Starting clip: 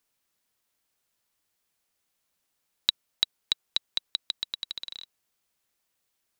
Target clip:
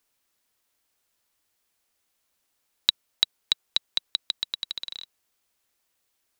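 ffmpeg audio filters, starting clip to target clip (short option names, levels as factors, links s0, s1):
-af "equalizer=f=160:w=3.2:g=-7.5,volume=1.41"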